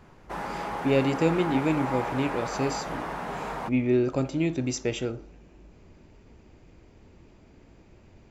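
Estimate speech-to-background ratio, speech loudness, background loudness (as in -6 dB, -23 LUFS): 6.5 dB, -27.0 LUFS, -33.5 LUFS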